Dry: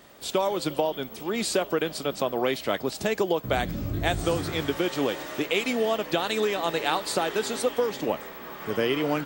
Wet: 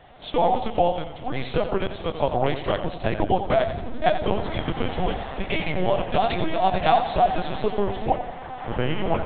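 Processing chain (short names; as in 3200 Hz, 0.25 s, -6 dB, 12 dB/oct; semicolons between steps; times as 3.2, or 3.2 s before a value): bell 820 Hz +14 dB 0.39 oct; frequency shift -88 Hz; LPC vocoder at 8 kHz pitch kept; warbling echo 88 ms, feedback 43%, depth 83 cents, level -10 dB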